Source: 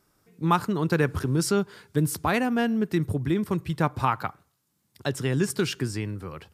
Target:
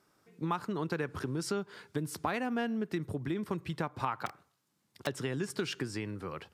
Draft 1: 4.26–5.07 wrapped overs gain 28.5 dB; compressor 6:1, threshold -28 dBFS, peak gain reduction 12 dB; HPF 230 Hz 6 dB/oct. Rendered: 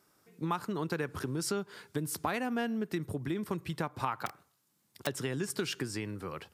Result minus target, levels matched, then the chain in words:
8000 Hz band +4.5 dB
4.26–5.07 wrapped overs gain 28.5 dB; compressor 6:1, threshold -28 dBFS, peak gain reduction 12 dB; HPF 230 Hz 6 dB/oct; high shelf 8700 Hz -11.5 dB

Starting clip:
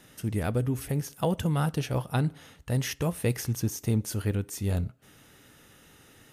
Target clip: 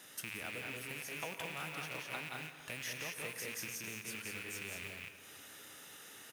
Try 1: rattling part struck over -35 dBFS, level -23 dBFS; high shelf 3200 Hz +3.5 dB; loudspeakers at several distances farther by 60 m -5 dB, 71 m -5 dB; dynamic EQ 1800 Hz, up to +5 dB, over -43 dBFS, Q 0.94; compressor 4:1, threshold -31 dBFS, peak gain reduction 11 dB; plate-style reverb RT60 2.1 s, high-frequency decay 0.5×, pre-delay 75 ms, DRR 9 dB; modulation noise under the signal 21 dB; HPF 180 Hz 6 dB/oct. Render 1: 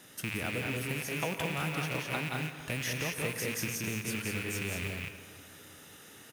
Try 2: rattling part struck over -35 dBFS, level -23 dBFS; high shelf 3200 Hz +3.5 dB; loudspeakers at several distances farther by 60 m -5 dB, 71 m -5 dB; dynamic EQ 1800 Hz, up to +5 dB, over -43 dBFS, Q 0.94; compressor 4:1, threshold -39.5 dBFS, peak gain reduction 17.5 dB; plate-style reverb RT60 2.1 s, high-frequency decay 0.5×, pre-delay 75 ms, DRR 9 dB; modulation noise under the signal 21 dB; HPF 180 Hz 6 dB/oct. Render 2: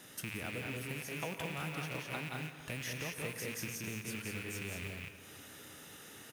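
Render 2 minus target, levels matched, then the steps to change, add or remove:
250 Hz band +6.0 dB
change: HPF 670 Hz 6 dB/oct

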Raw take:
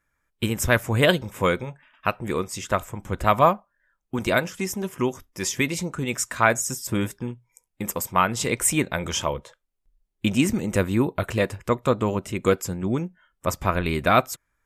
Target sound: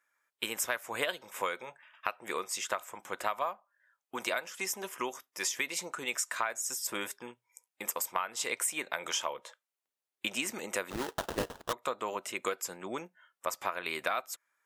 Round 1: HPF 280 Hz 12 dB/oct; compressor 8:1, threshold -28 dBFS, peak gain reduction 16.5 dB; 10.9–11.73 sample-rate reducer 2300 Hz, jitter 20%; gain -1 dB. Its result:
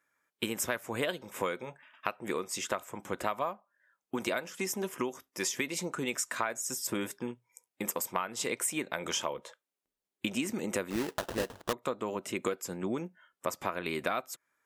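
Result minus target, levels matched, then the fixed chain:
250 Hz band +8.0 dB
HPF 660 Hz 12 dB/oct; compressor 8:1, threshold -28 dBFS, peak gain reduction 15 dB; 10.9–11.73 sample-rate reducer 2300 Hz, jitter 20%; gain -1 dB

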